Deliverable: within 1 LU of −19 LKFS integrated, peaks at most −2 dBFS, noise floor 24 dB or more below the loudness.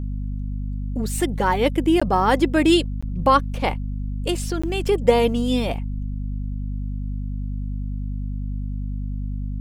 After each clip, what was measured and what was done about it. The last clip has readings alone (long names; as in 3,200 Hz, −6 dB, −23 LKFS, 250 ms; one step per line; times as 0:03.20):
number of dropouts 3; longest dropout 15 ms; mains hum 50 Hz; hum harmonics up to 250 Hz; level of the hum −24 dBFS; integrated loudness −23.0 LKFS; sample peak −3.5 dBFS; target loudness −19.0 LKFS
→ repair the gap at 0:02.00/0:03.01/0:04.62, 15 ms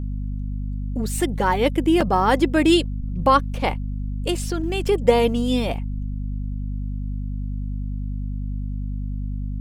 number of dropouts 0; mains hum 50 Hz; hum harmonics up to 250 Hz; level of the hum −24 dBFS
→ mains-hum notches 50/100/150/200/250 Hz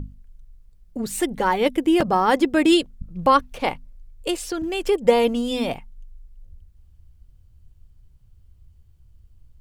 mains hum none found; integrated loudness −21.0 LKFS; sample peak −3.0 dBFS; target loudness −19.0 LKFS
→ level +2 dB
brickwall limiter −2 dBFS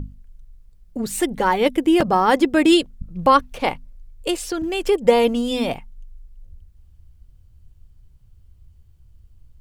integrated loudness −19.0 LKFS; sample peak −2.0 dBFS; background noise floor −52 dBFS